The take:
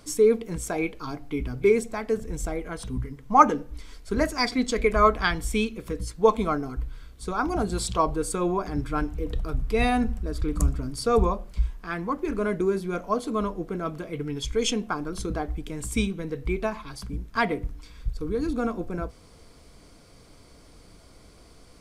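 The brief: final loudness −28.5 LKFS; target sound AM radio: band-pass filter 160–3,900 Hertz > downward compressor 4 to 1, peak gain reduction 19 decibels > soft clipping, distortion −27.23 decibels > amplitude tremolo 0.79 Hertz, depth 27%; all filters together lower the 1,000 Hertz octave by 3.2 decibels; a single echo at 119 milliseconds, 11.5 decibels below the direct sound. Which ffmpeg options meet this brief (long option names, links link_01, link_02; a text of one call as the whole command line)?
ffmpeg -i in.wav -af "highpass=160,lowpass=3900,equalizer=frequency=1000:width_type=o:gain=-4,aecho=1:1:119:0.266,acompressor=threshold=-35dB:ratio=4,asoftclip=threshold=-23dB,tremolo=f=0.79:d=0.27,volume=11.5dB" out.wav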